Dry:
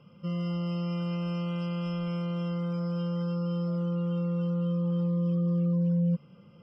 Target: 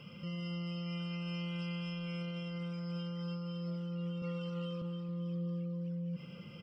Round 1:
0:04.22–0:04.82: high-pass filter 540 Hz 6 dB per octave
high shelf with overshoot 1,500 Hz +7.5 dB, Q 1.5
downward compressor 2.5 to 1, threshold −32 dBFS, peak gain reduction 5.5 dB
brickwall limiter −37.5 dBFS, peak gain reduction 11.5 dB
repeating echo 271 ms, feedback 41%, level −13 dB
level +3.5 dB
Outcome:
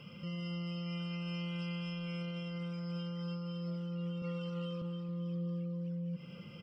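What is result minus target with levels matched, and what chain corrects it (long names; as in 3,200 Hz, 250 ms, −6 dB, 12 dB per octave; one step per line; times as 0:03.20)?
downward compressor: peak gain reduction +5.5 dB
0:04.22–0:04.82: high-pass filter 540 Hz 6 dB per octave
high shelf with overshoot 1,500 Hz +7.5 dB, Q 1.5
brickwall limiter −37.5 dBFS, peak gain reduction 16 dB
repeating echo 271 ms, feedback 41%, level −13 dB
level +3.5 dB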